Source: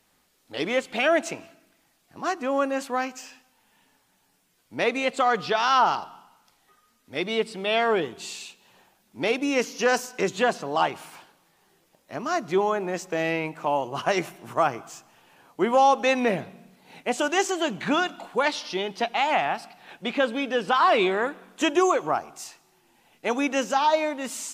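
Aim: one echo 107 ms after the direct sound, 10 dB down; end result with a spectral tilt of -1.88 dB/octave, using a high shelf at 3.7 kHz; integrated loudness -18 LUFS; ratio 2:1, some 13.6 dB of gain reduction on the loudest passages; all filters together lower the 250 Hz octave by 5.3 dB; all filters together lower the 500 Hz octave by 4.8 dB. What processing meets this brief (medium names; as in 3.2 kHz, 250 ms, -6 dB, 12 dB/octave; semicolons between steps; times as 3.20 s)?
peaking EQ 250 Hz -5 dB; peaking EQ 500 Hz -5 dB; treble shelf 3.7 kHz +7 dB; compression 2:1, threshold -42 dBFS; delay 107 ms -10 dB; trim +19 dB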